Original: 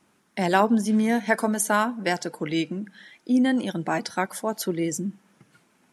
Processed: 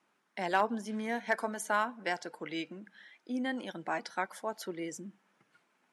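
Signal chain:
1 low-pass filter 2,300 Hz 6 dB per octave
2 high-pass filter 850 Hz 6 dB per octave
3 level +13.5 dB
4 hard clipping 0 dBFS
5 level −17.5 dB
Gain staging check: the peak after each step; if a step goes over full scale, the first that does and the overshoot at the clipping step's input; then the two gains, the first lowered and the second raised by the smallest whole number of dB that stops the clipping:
−5.5, −10.5, +3.0, 0.0, −17.5 dBFS
step 3, 3.0 dB
step 3 +10.5 dB, step 5 −14.5 dB

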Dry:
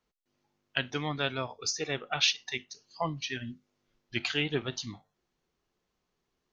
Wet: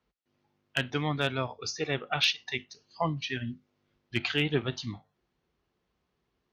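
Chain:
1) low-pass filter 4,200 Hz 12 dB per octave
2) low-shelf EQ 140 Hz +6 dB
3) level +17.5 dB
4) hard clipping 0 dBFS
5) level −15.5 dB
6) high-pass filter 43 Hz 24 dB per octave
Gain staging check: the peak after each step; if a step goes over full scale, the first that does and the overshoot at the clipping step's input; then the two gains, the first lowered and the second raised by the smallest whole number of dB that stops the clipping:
−11.0, −11.0, +6.5, 0.0, −15.5, −13.5 dBFS
step 3, 6.5 dB
step 3 +10.5 dB, step 5 −8.5 dB

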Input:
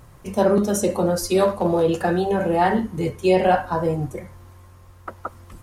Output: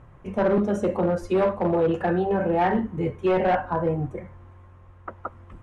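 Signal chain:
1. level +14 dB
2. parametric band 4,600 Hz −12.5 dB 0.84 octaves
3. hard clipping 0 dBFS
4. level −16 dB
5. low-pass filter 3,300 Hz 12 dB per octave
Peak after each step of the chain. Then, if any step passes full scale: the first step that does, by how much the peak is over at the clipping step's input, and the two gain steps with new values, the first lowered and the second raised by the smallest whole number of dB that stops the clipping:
+8.5, +8.5, 0.0, −16.0, −15.5 dBFS
step 1, 8.5 dB
step 1 +5 dB, step 4 −7 dB

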